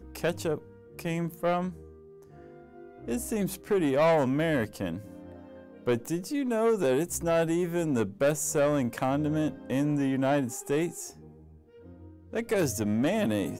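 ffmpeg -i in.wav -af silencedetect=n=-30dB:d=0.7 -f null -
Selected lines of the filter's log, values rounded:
silence_start: 1.69
silence_end: 3.08 | silence_duration: 1.39
silence_start: 4.97
silence_end: 5.87 | silence_duration: 0.90
silence_start: 11.06
silence_end: 12.34 | silence_duration: 1.27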